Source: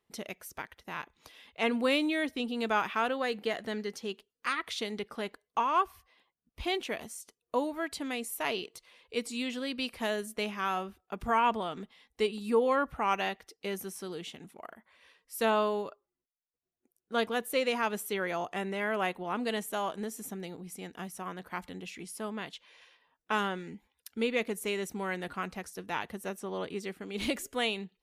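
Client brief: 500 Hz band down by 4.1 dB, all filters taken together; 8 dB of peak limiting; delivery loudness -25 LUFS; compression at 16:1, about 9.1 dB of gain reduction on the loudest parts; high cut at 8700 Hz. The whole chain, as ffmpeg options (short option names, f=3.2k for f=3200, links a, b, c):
-af "lowpass=8.7k,equalizer=f=500:t=o:g=-5,acompressor=threshold=-32dB:ratio=16,volume=15.5dB,alimiter=limit=-13dB:level=0:latency=1"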